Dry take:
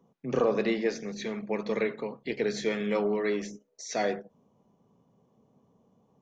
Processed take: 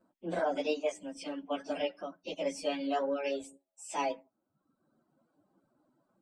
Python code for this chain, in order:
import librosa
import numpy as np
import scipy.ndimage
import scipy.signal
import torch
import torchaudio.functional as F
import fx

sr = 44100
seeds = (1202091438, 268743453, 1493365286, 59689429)

y = fx.pitch_bins(x, sr, semitones=5.0)
y = fx.dereverb_blind(y, sr, rt60_s=0.87)
y = y * librosa.db_to_amplitude(-1.5)